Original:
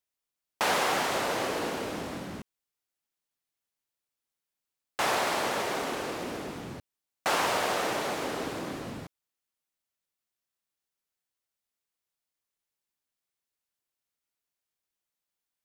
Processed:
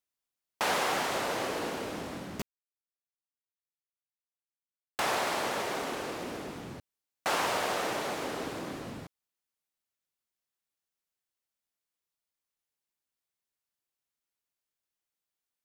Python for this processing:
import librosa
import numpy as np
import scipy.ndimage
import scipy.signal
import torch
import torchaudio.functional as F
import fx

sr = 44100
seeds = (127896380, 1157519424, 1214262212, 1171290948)

y = fx.quant_companded(x, sr, bits=2, at=(2.39, 5.0))
y = y * 10.0 ** (-2.5 / 20.0)